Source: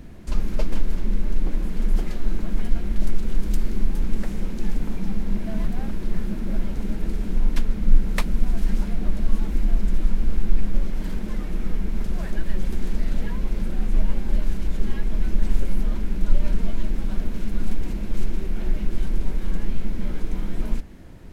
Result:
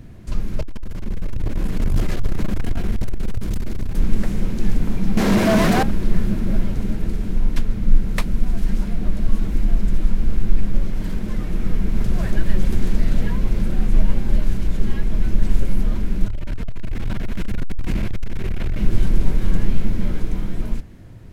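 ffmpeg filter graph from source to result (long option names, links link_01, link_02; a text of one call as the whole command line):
ffmpeg -i in.wav -filter_complex "[0:a]asettb=1/sr,asplit=3[link_01][link_02][link_03];[link_01]atrim=end=0.614[link_04];[link_02]atrim=start=0.61:end=3.97,asetpts=PTS-STARTPTS,afade=type=in:duration=0.004:curve=qsin,afade=type=out:start_time=3.356:duration=0.004:curve=qsin,lowshelf=frequency=280:gain=-4,asoftclip=type=hard:threshold=-22.5dB,aecho=1:1:274:0.237,atrim=end_sample=148176[link_05];[link_03]atrim=start=3.966[link_06];[link_04][link_05]acrossfade=duration=0.004:curve1=hsin:curve2=qsin[link_07];[link_07][link_06]acrossfade=duration=0.004:curve1=qsin:curve2=hsin,asettb=1/sr,asplit=3[link_08][link_09][link_10];[link_08]atrim=end=5.174[link_11];[link_09]atrim=start=5.17:end=5.83,asetpts=PTS-STARTPTS,afade=type=in:duration=0.004:curve=qsin,afade=type=out:start_time=0.656:duration=0.004:curve=qsin,bass=frequency=250:gain=-3,treble=frequency=4000:gain=11,asplit=2[link_12][link_13];[link_13]highpass=frequency=720:poles=1,volume=30dB,asoftclip=type=tanh:threshold=-11.5dB[link_14];[link_12][link_14]amix=inputs=2:normalize=0,lowpass=frequency=1400:poles=1,volume=-6dB[link_15];[link_10]atrim=start=5.826[link_16];[link_11][link_15]acrossfade=duration=0.004:curve1=hsin:curve2=qsin[link_17];[link_17][link_16]acrossfade=duration=0.004:curve1=qsin:curve2=hsin,asettb=1/sr,asplit=3[link_18][link_19][link_20];[link_18]atrim=end=16.284[link_21];[link_19]atrim=start=16.28:end=18.79,asetpts=PTS-STARTPTS,afade=type=in:duration=0.004:curve=qsin,afade=type=out:start_time=2.506:duration=0.004:curve=qsin,equalizer=frequency=2100:width_type=o:width=1.8:gain=7,acompressor=threshold=-20dB:ratio=3:attack=3.2:release=140:knee=1:detection=peak,asoftclip=type=hard:threshold=-23dB[link_22];[link_20]atrim=start=18.786[link_23];[link_21][link_22]acrossfade=duration=0.004:curve1=hsin:curve2=qsin[link_24];[link_24][link_23]acrossfade=duration=0.004:curve1=qsin:curve2=hsin,equalizer=frequency=110:width=2.2:gain=11,bandreject=frequency=860:width=23,dynaudnorm=framelen=110:gausssize=21:maxgain=11.5dB,volume=-1dB" out.wav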